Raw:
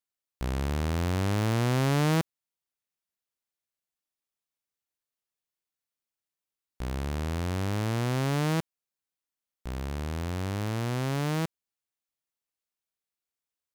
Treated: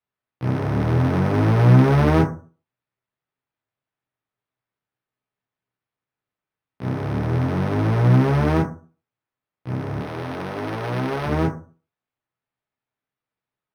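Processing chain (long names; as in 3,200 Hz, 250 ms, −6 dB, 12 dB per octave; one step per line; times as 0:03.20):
sub-octave generator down 1 octave, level +3 dB
elliptic band-pass filter 110–7,000 Hz
0:09.98–0:11.26: bass and treble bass −12 dB, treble +8 dB
convolution reverb RT60 0.40 s, pre-delay 8 ms, DRR −4 dB
linearly interpolated sample-rate reduction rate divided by 6×
level +2.5 dB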